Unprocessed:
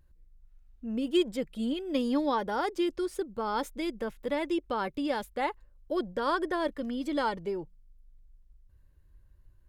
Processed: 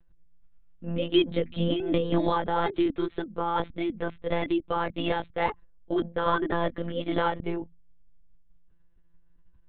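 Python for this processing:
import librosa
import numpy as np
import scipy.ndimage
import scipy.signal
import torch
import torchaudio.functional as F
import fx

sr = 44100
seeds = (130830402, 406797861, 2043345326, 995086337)

y = fx.hum_notches(x, sr, base_hz=60, count=4)
y = fx.lpc_monotone(y, sr, seeds[0], pitch_hz=170.0, order=16)
y = fx.band_squash(y, sr, depth_pct=70, at=(1.31, 2.86))
y = y * 10.0 ** (3.5 / 20.0)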